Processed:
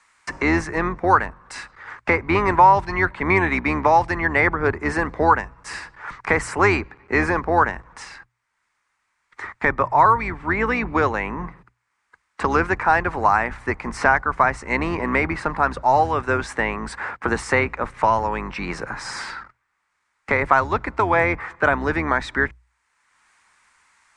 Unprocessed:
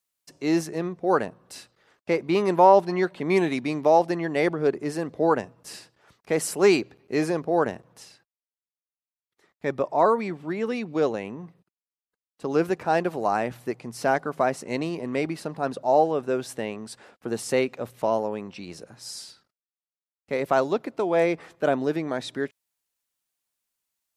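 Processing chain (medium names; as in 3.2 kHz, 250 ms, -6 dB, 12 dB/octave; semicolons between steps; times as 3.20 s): octave divider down 2 oct, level +1 dB; steep low-pass 9.2 kHz 48 dB/octave; high-order bell 1.4 kHz +15 dB; hum notches 60/120 Hz; three bands compressed up and down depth 70%; trim -1 dB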